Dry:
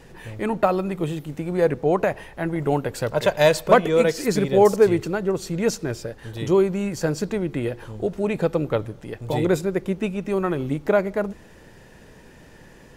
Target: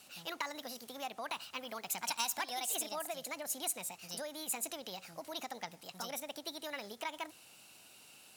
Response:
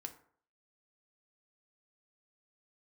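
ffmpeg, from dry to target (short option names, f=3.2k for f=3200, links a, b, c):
-af "lowpass=7.3k,equalizer=f=86:t=o:w=1.9:g=11.5,acompressor=threshold=-19dB:ratio=6,aderivative,asetrate=68355,aresample=44100,volume=5dB"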